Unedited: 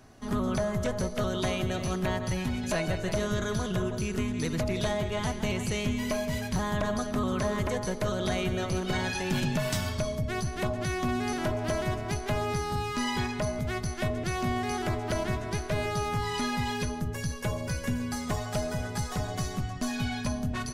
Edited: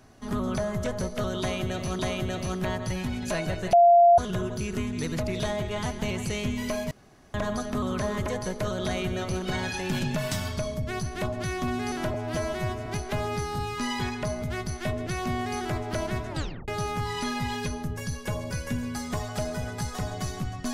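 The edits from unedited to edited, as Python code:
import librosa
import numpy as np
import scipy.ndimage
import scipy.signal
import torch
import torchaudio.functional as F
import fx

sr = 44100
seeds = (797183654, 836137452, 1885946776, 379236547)

y = fx.edit(x, sr, fx.repeat(start_s=1.4, length_s=0.59, count=2),
    fx.bleep(start_s=3.14, length_s=0.45, hz=692.0, db=-12.5),
    fx.room_tone_fill(start_s=6.32, length_s=0.43),
    fx.stretch_span(start_s=11.55, length_s=0.48, factor=1.5),
    fx.tape_stop(start_s=15.47, length_s=0.38), tone=tone)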